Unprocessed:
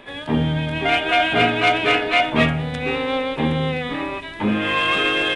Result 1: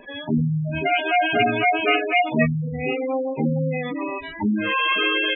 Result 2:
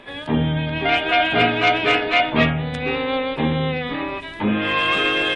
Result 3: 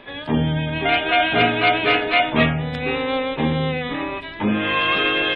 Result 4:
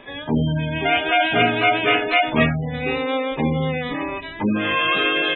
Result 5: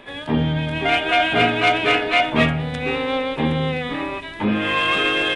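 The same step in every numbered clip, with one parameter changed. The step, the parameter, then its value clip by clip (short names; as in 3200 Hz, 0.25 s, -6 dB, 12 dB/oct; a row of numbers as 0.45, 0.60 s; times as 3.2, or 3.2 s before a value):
spectral gate, under each frame's peak: -10, -45, -35, -20, -60 dB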